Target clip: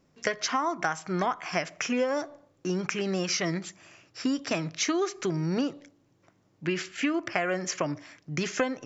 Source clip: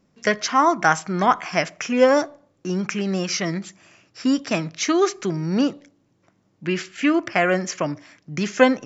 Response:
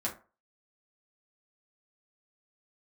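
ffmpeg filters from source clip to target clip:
-af "equalizer=frequency=210:width_type=o:width=0.21:gain=-10.5,acompressor=threshold=-23dB:ratio=10,volume=-1dB"

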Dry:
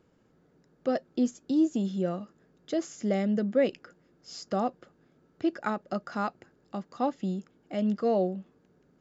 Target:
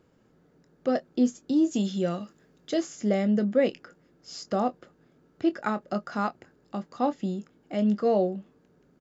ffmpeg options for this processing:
ffmpeg -i in.wav -filter_complex "[0:a]asplit=2[link_01][link_02];[link_02]adelay=24,volume=-12dB[link_03];[link_01][link_03]amix=inputs=2:normalize=0,asplit=3[link_04][link_05][link_06];[link_04]afade=type=out:start_time=1.7:duration=0.02[link_07];[link_05]adynamicequalizer=threshold=0.00355:dfrequency=1800:dqfactor=0.7:tfrequency=1800:tqfactor=0.7:attack=5:release=100:ratio=0.375:range=4:mode=boostabove:tftype=highshelf,afade=type=in:start_time=1.7:duration=0.02,afade=type=out:start_time=2.8:duration=0.02[link_08];[link_06]afade=type=in:start_time=2.8:duration=0.02[link_09];[link_07][link_08][link_09]amix=inputs=3:normalize=0,volume=2dB" out.wav

